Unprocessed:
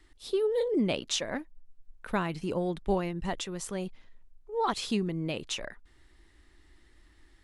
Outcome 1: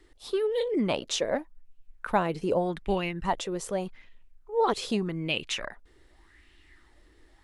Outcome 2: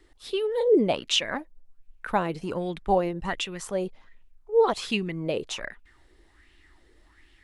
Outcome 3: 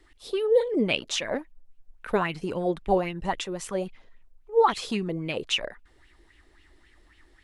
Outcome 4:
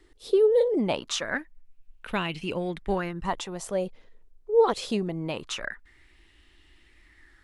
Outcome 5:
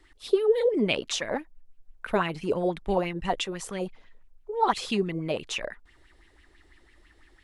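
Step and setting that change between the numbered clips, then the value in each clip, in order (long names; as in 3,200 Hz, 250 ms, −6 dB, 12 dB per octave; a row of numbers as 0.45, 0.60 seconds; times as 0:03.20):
auto-filter bell, speed: 0.84, 1.3, 3.7, 0.23, 6 Hertz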